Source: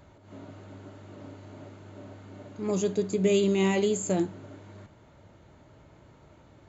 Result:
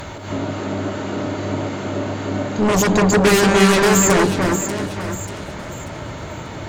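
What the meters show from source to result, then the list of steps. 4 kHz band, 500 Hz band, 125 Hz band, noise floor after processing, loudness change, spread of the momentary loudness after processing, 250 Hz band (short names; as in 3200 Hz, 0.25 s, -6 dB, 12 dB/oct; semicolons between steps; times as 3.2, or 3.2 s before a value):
+16.0 dB, +10.5 dB, +14.0 dB, -32 dBFS, +9.0 dB, 18 LU, +12.5 dB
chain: in parallel at -9 dB: sine folder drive 17 dB, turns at -13.5 dBFS; on the sum: echo with dull and thin repeats by turns 0.294 s, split 2400 Hz, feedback 54%, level -3 dB; mismatched tape noise reduction encoder only; gain +7 dB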